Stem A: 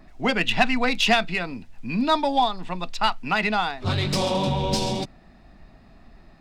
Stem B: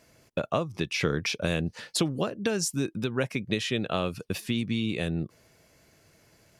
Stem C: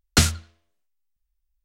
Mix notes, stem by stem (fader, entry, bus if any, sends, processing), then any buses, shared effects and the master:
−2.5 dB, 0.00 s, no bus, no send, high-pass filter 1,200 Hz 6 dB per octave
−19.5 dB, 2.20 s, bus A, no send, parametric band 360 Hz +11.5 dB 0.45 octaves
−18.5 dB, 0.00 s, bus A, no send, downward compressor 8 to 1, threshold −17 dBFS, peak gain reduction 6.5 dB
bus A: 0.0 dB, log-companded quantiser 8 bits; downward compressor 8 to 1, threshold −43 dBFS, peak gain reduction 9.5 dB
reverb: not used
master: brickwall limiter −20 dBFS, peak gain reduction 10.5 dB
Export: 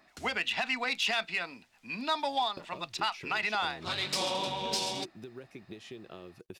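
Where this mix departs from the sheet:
stem B −19.5 dB → −7.5 dB
stem C −18.5 dB → −26.5 dB

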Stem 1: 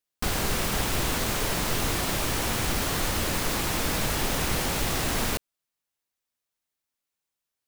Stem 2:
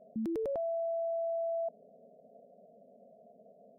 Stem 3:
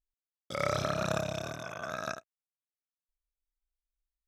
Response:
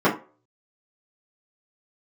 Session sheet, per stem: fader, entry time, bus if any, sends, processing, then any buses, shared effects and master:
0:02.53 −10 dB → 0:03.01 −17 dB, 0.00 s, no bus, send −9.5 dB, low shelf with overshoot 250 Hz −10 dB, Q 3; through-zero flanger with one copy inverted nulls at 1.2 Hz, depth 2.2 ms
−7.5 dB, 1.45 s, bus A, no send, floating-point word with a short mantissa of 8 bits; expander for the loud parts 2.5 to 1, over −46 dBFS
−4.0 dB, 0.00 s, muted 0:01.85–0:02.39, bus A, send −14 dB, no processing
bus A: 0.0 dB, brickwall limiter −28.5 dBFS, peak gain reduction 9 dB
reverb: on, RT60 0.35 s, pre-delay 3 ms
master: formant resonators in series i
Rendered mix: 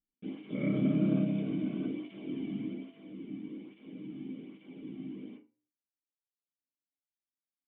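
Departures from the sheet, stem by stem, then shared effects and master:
stem 1: missing low shelf with overshoot 250 Hz −10 dB, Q 3
stem 3 −4.0 dB → +6.0 dB

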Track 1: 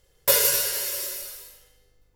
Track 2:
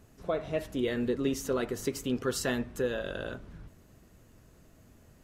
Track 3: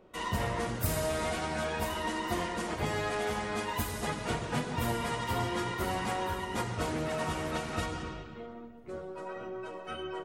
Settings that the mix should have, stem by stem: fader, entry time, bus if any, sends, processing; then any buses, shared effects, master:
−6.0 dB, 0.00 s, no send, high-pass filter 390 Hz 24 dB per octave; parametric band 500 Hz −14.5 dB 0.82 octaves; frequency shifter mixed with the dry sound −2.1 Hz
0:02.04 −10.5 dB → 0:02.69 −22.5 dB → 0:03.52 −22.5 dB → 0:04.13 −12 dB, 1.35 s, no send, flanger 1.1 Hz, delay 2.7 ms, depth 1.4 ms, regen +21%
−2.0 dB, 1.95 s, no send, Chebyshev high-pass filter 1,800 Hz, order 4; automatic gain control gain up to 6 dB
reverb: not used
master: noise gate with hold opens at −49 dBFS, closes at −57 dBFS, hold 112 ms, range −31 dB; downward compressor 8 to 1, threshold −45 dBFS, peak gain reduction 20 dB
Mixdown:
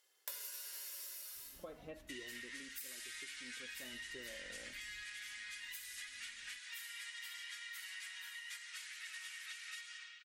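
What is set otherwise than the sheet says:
stem 1: missing frequency shifter mixed with the dry sound −2.1 Hz
stem 3: missing automatic gain control gain up to 6 dB
master: missing noise gate with hold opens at −49 dBFS, closes at −57 dBFS, hold 112 ms, range −31 dB

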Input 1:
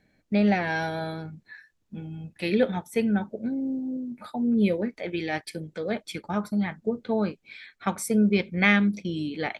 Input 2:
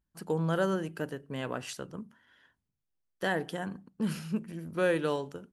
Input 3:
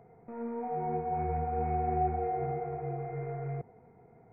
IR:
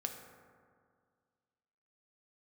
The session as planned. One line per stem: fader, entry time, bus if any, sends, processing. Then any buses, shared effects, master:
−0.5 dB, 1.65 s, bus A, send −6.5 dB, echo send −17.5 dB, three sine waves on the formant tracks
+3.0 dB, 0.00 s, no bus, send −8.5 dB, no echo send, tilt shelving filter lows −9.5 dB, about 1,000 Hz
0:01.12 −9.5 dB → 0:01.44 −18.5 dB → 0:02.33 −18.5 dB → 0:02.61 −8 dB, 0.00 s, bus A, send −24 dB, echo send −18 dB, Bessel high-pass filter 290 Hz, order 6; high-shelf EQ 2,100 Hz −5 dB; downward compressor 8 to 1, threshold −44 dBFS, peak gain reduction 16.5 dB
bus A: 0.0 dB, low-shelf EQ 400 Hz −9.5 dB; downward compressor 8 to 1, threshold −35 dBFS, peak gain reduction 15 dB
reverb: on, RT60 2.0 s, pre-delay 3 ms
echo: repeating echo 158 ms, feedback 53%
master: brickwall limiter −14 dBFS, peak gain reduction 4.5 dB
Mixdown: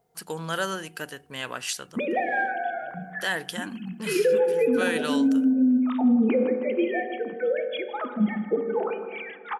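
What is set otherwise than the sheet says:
stem 1 −0.5 dB → +7.5 dB
stem 2: send off
stem 3: missing Bessel high-pass filter 290 Hz, order 6

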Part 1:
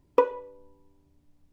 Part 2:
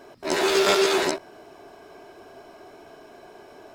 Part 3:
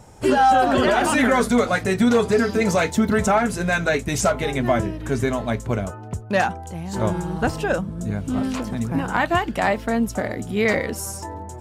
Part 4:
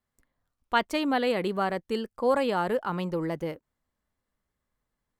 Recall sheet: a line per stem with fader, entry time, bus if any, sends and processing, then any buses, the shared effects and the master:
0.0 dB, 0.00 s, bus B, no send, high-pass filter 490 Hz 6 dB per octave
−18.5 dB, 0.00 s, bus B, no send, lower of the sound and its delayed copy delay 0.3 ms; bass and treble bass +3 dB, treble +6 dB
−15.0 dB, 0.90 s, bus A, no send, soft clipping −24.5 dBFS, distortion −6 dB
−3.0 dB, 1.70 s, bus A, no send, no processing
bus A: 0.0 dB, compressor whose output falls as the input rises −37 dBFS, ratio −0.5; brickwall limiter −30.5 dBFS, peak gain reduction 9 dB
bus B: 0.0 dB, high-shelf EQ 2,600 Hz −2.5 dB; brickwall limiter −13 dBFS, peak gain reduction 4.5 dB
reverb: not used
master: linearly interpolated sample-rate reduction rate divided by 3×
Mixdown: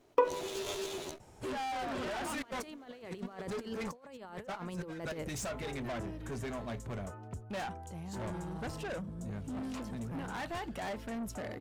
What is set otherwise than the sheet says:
stem 3: entry 0.90 s → 1.20 s
master: missing linearly interpolated sample-rate reduction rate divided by 3×

